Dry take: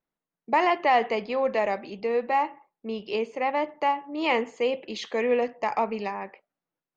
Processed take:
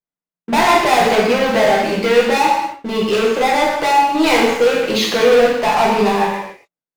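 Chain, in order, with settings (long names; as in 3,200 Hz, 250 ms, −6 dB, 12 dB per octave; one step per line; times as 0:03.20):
gain on a spectral selection 0:01.94–0:02.26, 1,300–2,700 Hz +8 dB
leveller curve on the samples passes 5
reverb whose tail is shaped and stops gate 320 ms falling, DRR −4.5 dB
level −3.5 dB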